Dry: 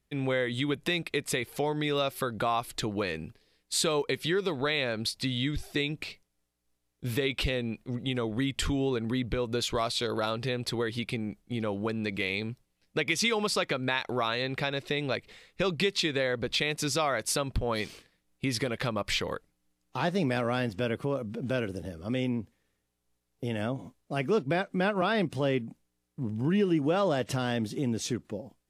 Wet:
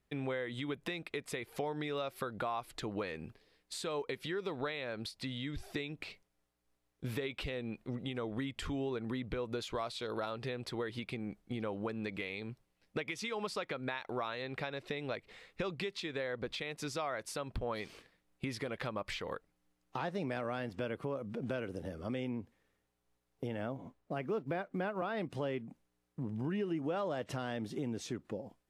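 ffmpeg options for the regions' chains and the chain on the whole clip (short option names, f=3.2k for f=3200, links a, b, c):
-filter_complex "[0:a]asettb=1/sr,asplit=3[a][b][c];[a]atrim=end=23.474[d];[b]atrim=start=23.47:end=25.17,asetpts=PTS-STARTPTS,afade=t=in:d=0.004:c=qsin,afade=t=out:st=1.696:d=0.004:c=qsin,acrusher=bits=8:mode=log:mix=0:aa=0.000001,highshelf=f=3.4k:g=-8.5[e];[c]atrim=start=25.166[f];[d][e]acrossfade=d=0.004:c1=hsin:c2=qsin[g];[g][f]acrossfade=d=0.004:c1=qsin:c2=hsin,lowshelf=f=430:g=-8,acompressor=threshold=-42dB:ratio=2.5,highshelf=f=2.4k:g=-11.5,volume=5dB"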